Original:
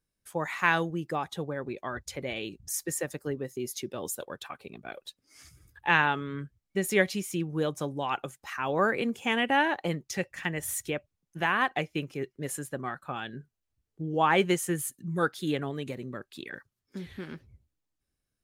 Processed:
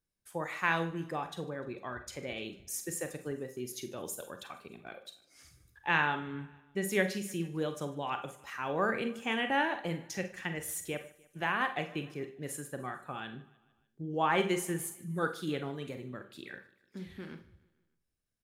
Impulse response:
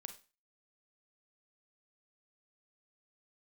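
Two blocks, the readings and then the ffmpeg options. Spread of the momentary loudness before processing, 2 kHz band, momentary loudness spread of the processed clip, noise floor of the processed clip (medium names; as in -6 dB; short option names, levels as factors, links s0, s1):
17 LU, -4.5 dB, 17 LU, -77 dBFS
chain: -filter_complex "[0:a]aecho=1:1:150|300|450|600:0.0794|0.0437|0.024|0.0132[s0];[1:a]atrim=start_sample=2205[s1];[s0][s1]afir=irnorm=-1:irlink=0"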